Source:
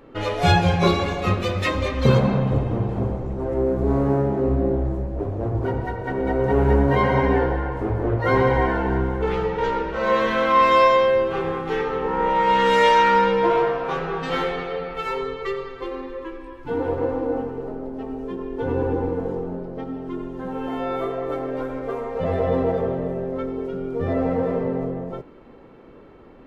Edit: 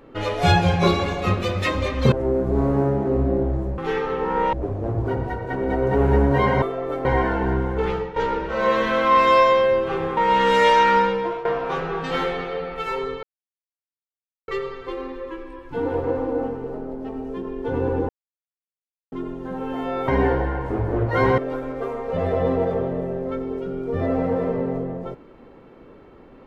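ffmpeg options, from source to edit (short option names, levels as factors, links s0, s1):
-filter_complex "[0:a]asplit=14[s0][s1][s2][s3][s4][s5][s6][s7][s8][s9][s10][s11][s12][s13];[s0]atrim=end=2.122[s14];[s1]atrim=start=3.438:end=5.102[s15];[s2]atrim=start=11.608:end=12.362[s16];[s3]atrim=start=5.098:end=7.192[s17];[s4]atrim=start=21.018:end=21.452[s18];[s5]atrim=start=8.488:end=9.6,asetpts=PTS-STARTPTS,afade=t=out:st=0.852:d=0.26:silence=0.251189[s19];[s6]atrim=start=9.6:end=11.612,asetpts=PTS-STARTPTS,afade=t=in:d=0.004:c=hsin:silence=0.251189[s20];[s7]atrim=start=12.358:end=13.64,asetpts=PTS-STARTPTS,afade=t=out:st=0.792:d=0.49:silence=0.158489[s21];[s8]atrim=start=13.64:end=15.42,asetpts=PTS-STARTPTS,afade=t=in:d=0.004:c=hsin:silence=0.158489,afade=t=out:st=1.776:d=0.004:c=hsin,apad=pad_dur=1.25[s22];[s9]atrim=start=15.42:end=19.03,asetpts=PTS-STARTPTS,afade=t=in:d=0.004:c=hsin,afade=t=out:st=3.606:d=0.004:c=hsin[s23];[s10]atrim=start=19.03:end=20.06,asetpts=PTS-STARTPTS,volume=0[s24];[s11]atrim=start=20.06:end=21.022,asetpts=PTS-STARTPTS,afade=t=in:d=0.004:c=hsin[s25];[s12]atrim=start=7.188:end=8.492[s26];[s13]atrim=start=21.448[s27];[s14][s15]acrossfade=d=0.004:c1=hsin:c2=hsin[s28];[s28][s16]acrossfade=d=0.004:c1=hsin:c2=hsin[s29];[s29][s17]acrossfade=d=0.004:c1=hsin:c2=hsin[s30];[s30][s18]acrossfade=d=0.004:c1=hsin:c2=hsin[s31];[s19][s20]concat=n=2:v=0:a=1[s32];[s31][s32]acrossfade=d=0.004:c1=hsin:c2=hsin[s33];[s21][s22][s23][s24][s25]concat=n=5:v=0:a=1[s34];[s33][s34]acrossfade=d=0.004:c1=hsin:c2=hsin[s35];[s35][s26]acrossfade=d=0.004:c1=hsin:c2=hsin[s36];[s36][s27]acrossfade=d=0.004:c1=hsin:c2=hsin"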